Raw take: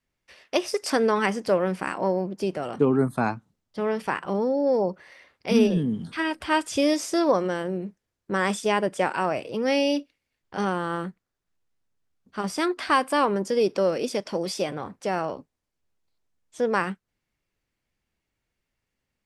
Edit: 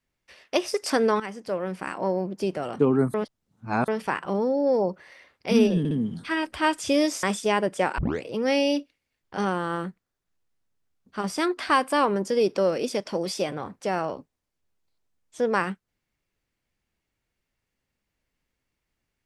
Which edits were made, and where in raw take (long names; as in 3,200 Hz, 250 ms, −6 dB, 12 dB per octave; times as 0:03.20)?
0:01.20–0:02.32: fade in, from −13 dB
0:03.14–0:03.88: reverse
0:05.79: stutter 0.06 s, 3 plays
0:07.11–0:08.43: remove
0:09.18: tape start 0.25 s